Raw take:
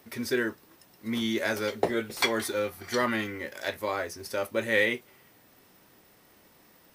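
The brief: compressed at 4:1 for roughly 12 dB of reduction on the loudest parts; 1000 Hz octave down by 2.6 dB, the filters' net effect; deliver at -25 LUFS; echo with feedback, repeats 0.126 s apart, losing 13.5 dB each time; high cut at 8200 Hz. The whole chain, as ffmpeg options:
-af "lowpass=8.2k,equalizer=f=1k:t=o:g=-3.5,acompressor=threshold=-36dB:ratio=4,aecho=1:1:126|252:0.211|0.0444,volume=14dB"

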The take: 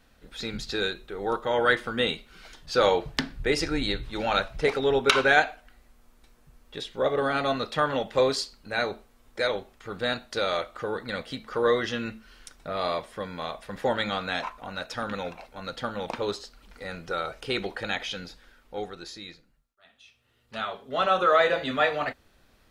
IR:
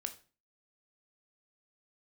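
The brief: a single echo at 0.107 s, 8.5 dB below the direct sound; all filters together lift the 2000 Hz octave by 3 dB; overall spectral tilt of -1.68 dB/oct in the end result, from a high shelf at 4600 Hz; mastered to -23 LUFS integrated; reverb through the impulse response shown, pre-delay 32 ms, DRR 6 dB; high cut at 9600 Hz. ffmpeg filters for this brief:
-filter_complex "[0:a]lowpass=9.6k,equalizer=f=2k:t=o:g=5,highshelf=f=4.6k:g=-6,aecho=1:1:107:0.376,asplit=2[a][b];[1:a]atrim=start_sample=2205,adelay=32[c];[b][c]afir=irnorm=-1:irlink=0,volume=-4.5dB[d];[a][d]amix=inputs=2:normalize=0,volume=2dB"

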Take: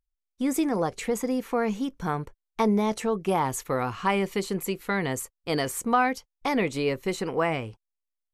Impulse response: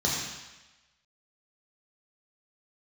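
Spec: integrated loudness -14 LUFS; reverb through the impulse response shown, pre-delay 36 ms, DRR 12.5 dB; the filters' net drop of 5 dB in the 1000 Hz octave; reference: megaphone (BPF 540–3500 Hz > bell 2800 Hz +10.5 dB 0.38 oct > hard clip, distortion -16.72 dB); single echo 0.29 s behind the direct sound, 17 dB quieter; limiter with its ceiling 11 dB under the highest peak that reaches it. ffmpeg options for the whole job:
-filter_complex "[0:a]equalizer=f=1k:t=o:g=-6,alimiter=level_in=0.5dB:limit=-24dB:level=0:latency=1,volume=-0.5dB,aecho=1:1:290:0.141,asplit=2[a][b];[1:a]atrim=start_sample=2205,adelay=36[c];[b][c]afir=irnorm=-1:irlink=0,volume=-23.5dB[d];[a][d]amix=inputs=2:normalize=0,highpass=540,lowpass=3.5k,equalizer=f=2.8k:t=o:w=0.38:g=10.5,asoftclip=type=hard:threshold=-29dB,volume=25dB"

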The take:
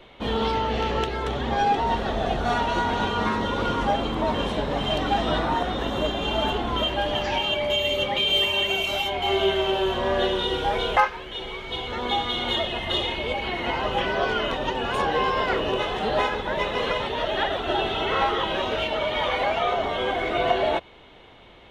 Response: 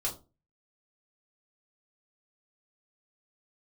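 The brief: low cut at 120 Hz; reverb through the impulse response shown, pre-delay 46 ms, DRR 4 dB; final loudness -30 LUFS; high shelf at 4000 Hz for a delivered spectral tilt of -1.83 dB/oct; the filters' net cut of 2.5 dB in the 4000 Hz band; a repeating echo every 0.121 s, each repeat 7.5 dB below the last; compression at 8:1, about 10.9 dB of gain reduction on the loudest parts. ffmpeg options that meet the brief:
-filter_complex "[0:a]highpass=120,highshelf=f=4k:g=6,equalizer=f=4k:t=o:g=-7,acompressor=threshold=-26dB:ratio=8,aecho=1:1:121|242|363|484|605:0.422|0.177|0.0744|0.0312|0.0131,asplit=2[a][b];[1:a]atrim=start_sample=2205,adelay=46[c];[b][c]afir=irnorm=-1:irlink=0,volume=-7.5dB[d];[a][d]amix=inputs=2:normalize=0,volume=-3dB"

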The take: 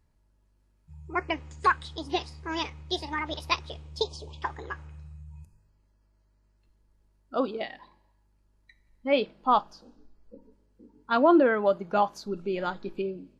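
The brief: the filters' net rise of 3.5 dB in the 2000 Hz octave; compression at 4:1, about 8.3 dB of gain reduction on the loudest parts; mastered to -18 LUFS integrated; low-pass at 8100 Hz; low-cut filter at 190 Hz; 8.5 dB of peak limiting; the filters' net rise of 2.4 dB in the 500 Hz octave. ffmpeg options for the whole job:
-af "highpass=190,lowpass=8.1k,equalizer=f=500:t=o:g=3,equalizer=f=2k:t=o:g=4.5,acompressor=threshold=-24dB:ratio=4,volume=15.5dB,alimiter=limit=-4.5dB:level=0:latency=1"

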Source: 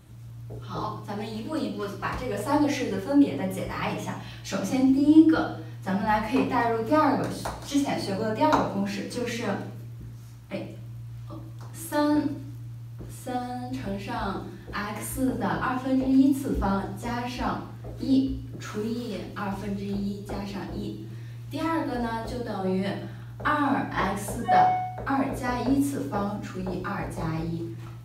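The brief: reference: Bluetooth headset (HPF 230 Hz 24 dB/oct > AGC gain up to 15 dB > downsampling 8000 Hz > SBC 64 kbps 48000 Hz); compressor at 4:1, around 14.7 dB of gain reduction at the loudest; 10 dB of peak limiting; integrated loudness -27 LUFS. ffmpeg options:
-af "acompressor=threshold=-28dB:ratio=4,alimiter=level_in=3.5dB:limit=-24dB:level=0:latency=1,volume=-3.5dB,highpass=f=230:w=0.5412,highpass=f=230:w=1.3066,dynaudnorm=m=15dB,aresample=8000,aresample=44100" -ar 48000 -c:a sbc -b:a 64k

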